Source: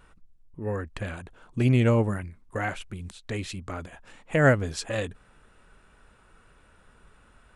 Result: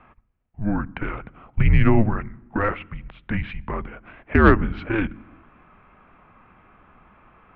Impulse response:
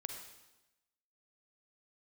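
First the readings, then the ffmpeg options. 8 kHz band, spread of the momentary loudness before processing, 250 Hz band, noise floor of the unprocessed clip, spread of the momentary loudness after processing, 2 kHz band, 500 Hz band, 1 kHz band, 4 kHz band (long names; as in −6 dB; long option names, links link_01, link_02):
below −30 dB, 18 LU, +6.0 dB, −59 dBFS, 18 LU, +4.5 dB, +1.5 dB, +7.5 dB, −3.0 dB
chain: -filter_complex "[0:a]highpass=frequency=160:width_type=q:width=0.5412,highpass=frequency=160:width_type=q:width=1.307,lowpass=frequency=2900:width_type=q:width=0.5176,lowpass=frequency=2900:width_type=q:width=0.7071,lowpass=frequency=2900:width_type=q:width=1.932,afreqshift=-220,asplit=2[link_01][link_02];[link_02]lowshelf=frequency=340:width_type=q:width=1.5:gain=12.5[link_03];[1:a]atrim=start_sample=2205,lowpass=3300[link_04];[link_03][link_04]afir=irnorm=-1:irlink=0,volume=-17dB[link_05];[link_01][link_05]amix=inputs=2:normalize=0,acontrast=84"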